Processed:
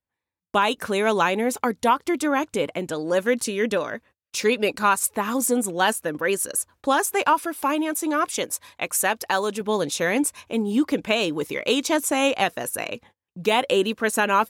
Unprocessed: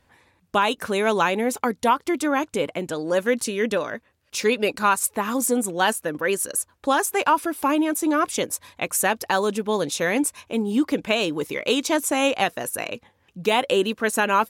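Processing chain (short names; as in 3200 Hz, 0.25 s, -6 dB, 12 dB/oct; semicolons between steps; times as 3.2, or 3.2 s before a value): 7.33–9.61 low shelf 350 Hz -6.5 dB; gate -49 dBFS, range -29 dB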